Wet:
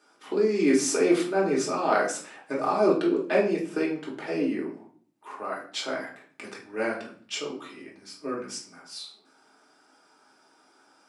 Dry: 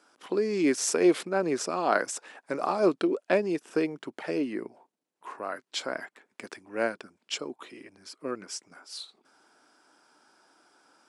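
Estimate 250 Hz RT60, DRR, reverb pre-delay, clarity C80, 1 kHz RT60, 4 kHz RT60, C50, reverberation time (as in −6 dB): 0.75 s, −4.0 dB, 3 ms, 12.5 dB, 0.45 s, 0.40 s, 8.0 dB, 0.50 s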